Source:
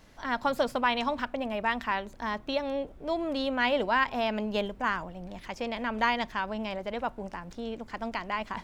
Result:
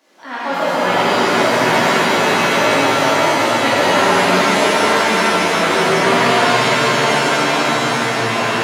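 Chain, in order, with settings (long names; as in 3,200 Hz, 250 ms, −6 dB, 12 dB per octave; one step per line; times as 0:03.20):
Butterworth high-pass 230 Hz 48 dB per octave
delay with pitch and tempo change per echo 130 ms, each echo −7 semitones, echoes 2
echo with a time of its own for lows and highs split 720 Hz, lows 164 ms, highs 774 ms, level −5 dB
reverb with rising layers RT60 3.9 s, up +7 semitones, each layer −2 dB, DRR −10.5 dB
level −1.5 dB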